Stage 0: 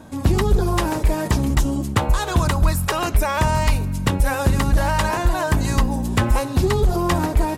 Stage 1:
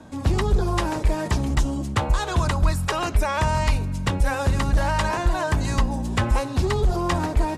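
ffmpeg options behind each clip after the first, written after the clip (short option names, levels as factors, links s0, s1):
-filter_complex "[0:a]lowpass=8300,acrossover=split=130|460|3600[s0][s1][s2][s3];[s1]asoftclip=type=tanh:threshold=0.0708[s4];[s0][s4][s2][s3]amix=inputs=4:normalize=0,volume=0.75"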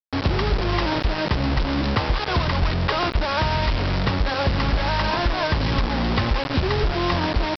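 -af "highshelf=f=4100:g=-7.5,acompressor=threshold=0.0631:ratio=4,aresample=11025,acrusher=bits=4:mix=0:aa=0.000001,aresample=44100,volume=1.78"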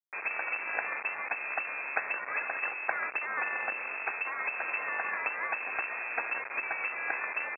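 -filter_complex "[0:a]aeval=exprs='0.398*(cos(1*acos(clip(val(0)/0.398,-1,1)))-cos(1*PI/2))+0.0891*(cos(3*acos(clip(val(0)/0.398,-1,1)))-cos(3*PI/2))':c=same,lowpass=f=2300:t=q:w=0.5098,lowpass=f=2300:t=q:w=0.6013,lowpass=f=2300:t=q:w=0.9,lowpass=f=2300:t=q:w=2.563,afreqshift=-2700,acrossover=split=310 2100:gain=0.158 1 0.0708[s0][s1][s2];[s0][s1][s2]amix=inputs=3:normalize=0"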